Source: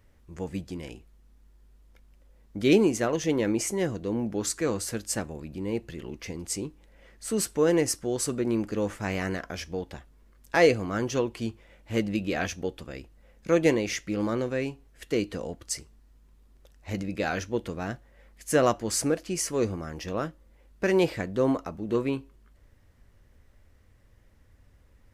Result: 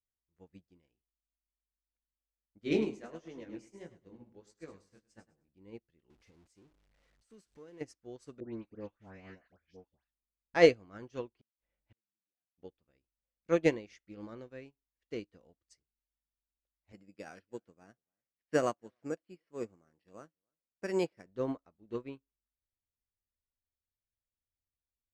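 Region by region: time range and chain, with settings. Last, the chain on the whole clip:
2.58–5.49 s: chorus 1.5 Hz, delay 17.5 ms, depth 6.5 ms + feedback delay 102 ms, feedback 39%, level -8 dB
6.10–7.81 s: jump at every zero crossing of -33 dBFS + treble shelf 9.6 kHz +10 dB + compression 2.5:1, threshold -32 dBFS
8.40–10.55 s: distance through air 98 m + phase dispersion highs, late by 135 ms, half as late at 1.6 kHz
11.35–12.58 s: companding laws mixed up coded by mu + low-pass 4.6 kHz + inverted gate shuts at -26 dBFS, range -38 dB
16.92–21.26 s: high-pass 130 Hz + careless resampling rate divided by 6×, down filtered, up hold + delay 288 ms -23.5 dB
whole clip: low-pass 5.8 kHz 12 dB/octave; upward expansion 2.5:1, over -42 dBFS

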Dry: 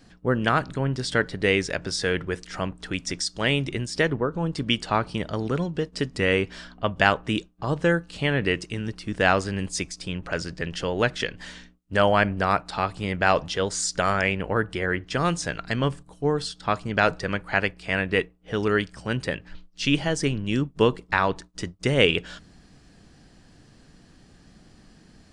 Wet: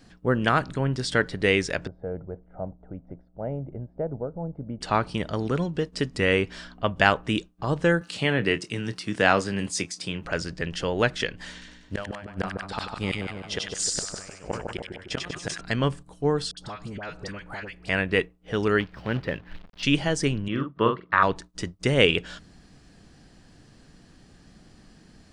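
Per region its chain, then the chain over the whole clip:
1.87–4.81 s: four-pole ladder low-pass 830 Hz, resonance 35% + comb 1.4 ms, depth 43%
8.01–10.25 s: high-pass 96 Hz 24 dB/octave + doubling 25 ms -12 dB + tape noise reduction on one side only encoder only
11.52–15.61 s: inverted gate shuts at -16 dBFS, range -28 dB + two-band feedback delay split 1.2 kHz, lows 153 ms, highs 96 ms, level -4 dB + decay stretcher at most 88 dB/s
16.51–17.89 s: compression 8:1, threshold -31 dBFS + phase dispersion highs, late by 64 ms, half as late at 1.2 kHz
18.80–19.83 s: companded quantiser 4-bit + distance through air 330 m + tape noise reduction on one side only encoder only
20.48–21.23 s: cabinet simulation 120–3100 Hz, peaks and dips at 160 Hz -8 dB, 260 Hz -5 dB, 440 Hz -5 dB, 810 Hz -8 dB, 1.2 kHz +10 dB, 2.5 kHz -8 dB + doubling 44 ms -6 dB
whole clip: none

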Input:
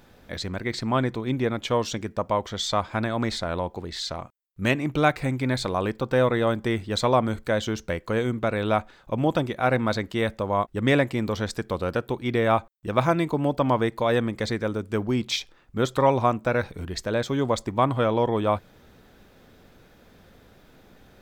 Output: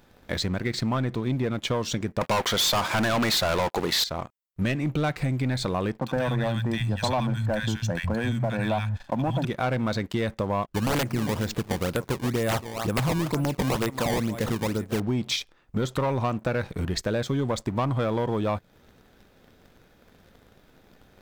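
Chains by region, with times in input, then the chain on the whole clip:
2.21–4.04 s: high-pass 290 Hz 6 dB/octave + bass shelf 470 Hz -6.5 dB + waveshaping leveller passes 5
5.99–9.45 s: comb 1.2 ms, depth 66% + three bands offset in time mids, highs, lows 70/150 ms, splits 150/1400 Hz
10.67–15.00 s: delay 278 ms -17.5 dB + decimation with a swept rate 19×, swing 160% 2.1 Hz + integer overflow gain 13 dB
whole clip: dynamic bell 150 Hz, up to +6 dB, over -39 dBFS, Q 1.4; waveshaping leveller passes 2; compression 4:1, threshold -25 dBFS

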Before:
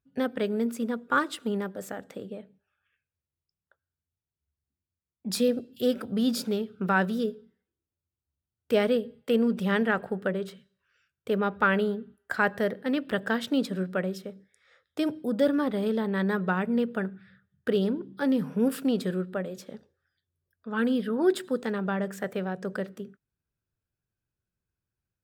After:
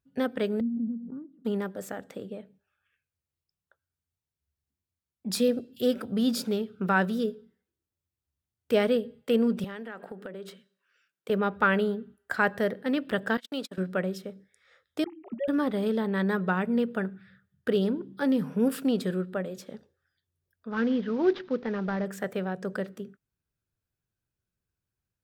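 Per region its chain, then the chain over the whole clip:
0.60–1.45 s: Butterworth band-pass 200 Hz, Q 2 + swell ahead of each attack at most 20 dB/s
9.64–11.30 s: high-pass 200 Hz 24 dB/octave + compression, threshold -36 dBFS
13.37–13.78 s: gate -33 dBFS, range -41 dB + high-pass 770 Hz 6 dB/octave
15.04–15.48 s: formants replaced by sine waves + static phaser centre 2.3 kHz, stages 8
20.71–22.06 s: CVSD coder 32 kbps + distance through air 220 m
whole clip: none

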